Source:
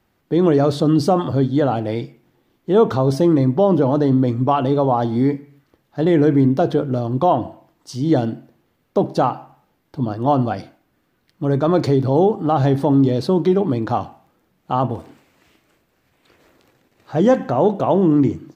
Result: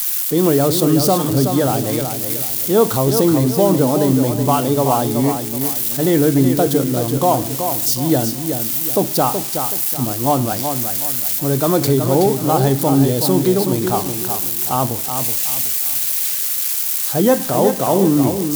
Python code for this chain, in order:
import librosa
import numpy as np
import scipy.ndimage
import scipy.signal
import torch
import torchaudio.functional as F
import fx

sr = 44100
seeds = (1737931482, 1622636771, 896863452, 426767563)

p1 = x + 0.5 * 10.0 ** (-19.5 / 20.0) * np.diff(np.sign(x), prepend=np.sign(x[:1]))
p2 = fx.high_shelf(p1, sr, hz=4700.0, db=10.5)
y = p2 + fx.echo_feedback(p2, sr, ms=374, feedback_pct=35, wet_db=-7, dry=0)